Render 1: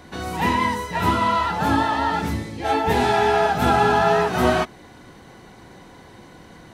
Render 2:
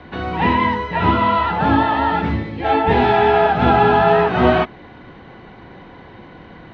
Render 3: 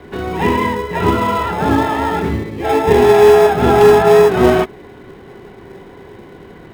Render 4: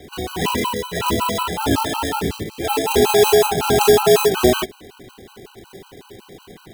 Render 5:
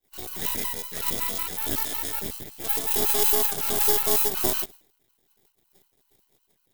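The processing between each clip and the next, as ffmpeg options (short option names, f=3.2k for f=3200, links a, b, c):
-filter_complex "[0:a]acrossover=split=370|1200|1800[a][b][c][d];[c]alimiter=level_in=6dB:limit=-24dB:level=0:latency=1,volume=-6dB[e];[a][b][e][d]amix=inputs=4:normalize=0,lowpass=f=3.3k:w=0.5412,lowpass=f=3.3k:w=1.3066,volume=5dB"
-filter_complex "[0:a]equalizer=f=400:w=6.1:g=14,asplit=2[a][b];[b]acrusher=samples=30:mix=1:aa=0.000001,volume=-12dB[c];[a][c]amix=inputs=2:normalize=0,aeval=exprs='1*(abs(mod(val(0)/1+3,4)-2)-1)':c=same,volume=-1dB"
-af "aexciter=amount=4.5:drive=4:freq=2.8k,afftfilt=real='re*gt(sin(2*PI*5.4*pts/sr)*(1-2*mod(floor(b*sr/1024/790),2)),0)':imag='im*gt(sin(2*PI*5.4*pts/sr)*(1-2*mod(floor(b*sr/1024/790),2)),0)':win_size=1024:overlap=0.75,volume=-2.5dB"
-af "aeval=exprs='max(val(0),0)':c=same,aemphasis=mode=production:type=75fm,agate=range=-33dB:threshold=-28dB:ratio=3:detection=peak,volume=-10.5dB"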